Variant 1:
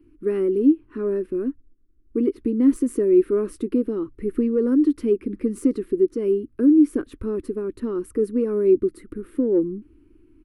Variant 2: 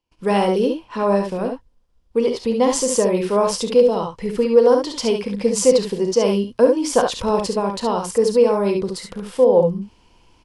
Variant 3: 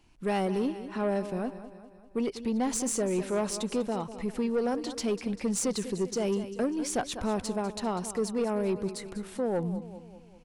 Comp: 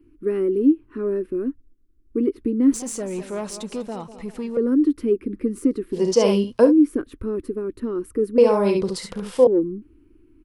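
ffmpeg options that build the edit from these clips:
-filter_complex "[1:a]asplit=2[a][b];[0:a]asplit=4[c][d][e][f];[c]atrim=end=2.742[g];[2:a]atrim=start=2.738:end=4.572[h];[d]atrim=start=4.568:end=6.01[i];[a]atrim=start=5.91:end=6.73[j];[e]atrim=start=6.63:end=8.382[k];[b]atrim=start=8.378:end=9.472[l];[f]atrim=start=9.468[m];[g][h]acrossfade=d=0.004:c1=hsin:c2=hsin[n];[n][i]acrossfade=d=0.004:c1=hsin:c2=hsin[o];[o][j]acrossfade=d=0.1:c1=tri:c2=tri[p];[p][k]acrossfade=d=0.1:c1=tri:c2=tri[q];[q][l]acrossfade=d=0.004:c1=hsin:c2=hsin[r];[r][m]acrossfade=d=0.004:c1=hsin:c2=hsin"

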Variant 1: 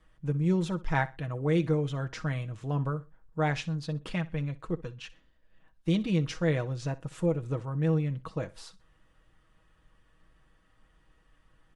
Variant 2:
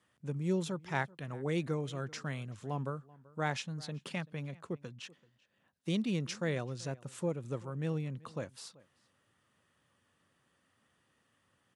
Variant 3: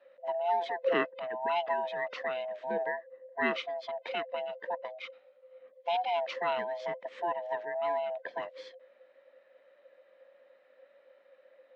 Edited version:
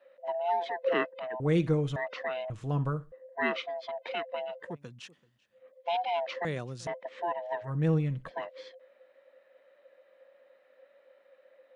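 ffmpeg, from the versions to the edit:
-filter_complex "[0:a]asplit=3[a][b][c];[1:a]asplit=2[d][e];[2:a]asplit=6[f][g][h][i][j][k];[f]atrim=end=1.402[l];[a]atrim=start=1.398:end=1.962[m];[g]atrim=start=1.958:end=2.502[n];[b]atrim=start=2.498:end=3.122[o];[h]atrim=start=3.118:end=4.76[p];[d]atrim=start=4.6:end=5.67[q];[i]atrim=start=5.51:end=6.452[r];[e]atrim=start=6.448:end=6.872[s];[j]atrim=start=6.868:end=7.71[t];[c]atrim=start=7.61:end=8.32[u];[k]atrim=start=8.22[v];[l][m]acrossfade=d=0.004:c1=hsin:c2=hsin[w];[w][n]acrossfade=d=0.004:c1=hsin:c2=hsin[x];[x][o]acrossfade=d=0.004:c1=hsin:c2=hsin[y];[y][p]acrossfade=d=0.004:c1=hsin:c2=hsin[z];[z][q]acrossfade=d=0.16:c1=tri:c2=tri[aa];[aa][r]acrossfade=d=0.16:c1=tri:c2=tri[ab];[ab][s]acrossfade=d=0.004:c1=hsin:c2=hsin[ac];[ac][t]acrossfade=d=0.004:c1=hsin:c2=hsin[ad];[ad][u]acrossfade=d=0.1:c1=tri:c2=tri[ae];[ae][v]acrossfade=d=0.1:c1=tri:c2=tri"

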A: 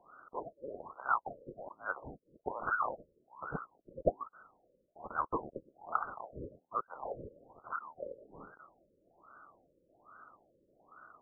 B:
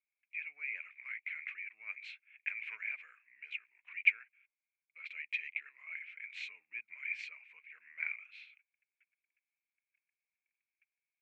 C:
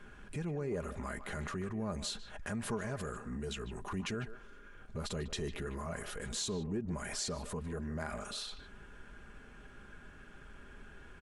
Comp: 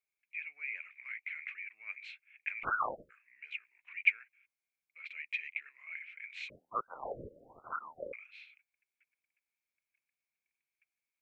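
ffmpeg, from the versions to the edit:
-filter_complex "[0:a]asplit=2[a][b];[1:a]asplit=3[c][d][e];[c]atrim=end=2.65[f];[a]atrim=start=2.63:end=3.11[g];[d]atrim=start=3.09:end=6.502[h];[b]atrim=start=6.498:end=8.132[i];[e]atrim=start=8.128[j];[f][g]acrossfade=d=0.02:c1=tri:c2=tri[k];[k][h]acrossfade=d=0.02:c1=tri:c2=tri[l];[l][i]acrossfade=d=0.004:c1=hsin:c2=hsin[m];[m][j]acrossfade=d=0.004:c1=hsin:c2=hsin"

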